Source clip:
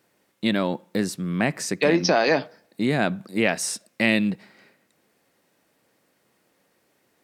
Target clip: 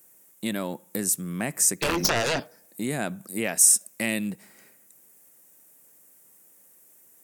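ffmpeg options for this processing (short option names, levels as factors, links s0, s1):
-filter_complex "[0:a]asplit=2[s0][s1];[s1]acompressor=threshold=0.0251:ratio=6,volume=0.891[s2];[s0][s2]amix=inputs=2:normalize=0,aexciter=amount=12.5:drive=2.6:freq=6400,asettb=1/sr,asplit=3[s3][s4][s5];[s3]atrim=end=1.824[s6];[s4]atrim=start=1.82:end=2.4,asetpts=PTS-STARTPTS,afade=t=in:d=0.004:c=qsin,afade=t=out:st=0.576:d=0.004:c=qsin,aeval=exprs='0.841*(cos(1*acos(clip(val(0)/0.841,-1,1)))-cos(1*PI/2))+0.237*(cos(4*acos(clip(val(0)/0.841,-1,1)))-cos(4*PI/2))+0.168*(cos(6*acos(clip(val(0)/0.841,-1,1)))-cos(6*PI/2))+0.376*(cos(7*acos(clip(val(0)/0.841,-1,1)))-cos(7*PI/2))':c=same[s7];[s5]atrim=start=2.396[s8];[s6][s7]acrossfade=d=0.004:c1=hsin:c2=qsin[s9];[s9][s8]acrossfade=d=0.004:c1=qsin:c2=hsin,volume=0.376"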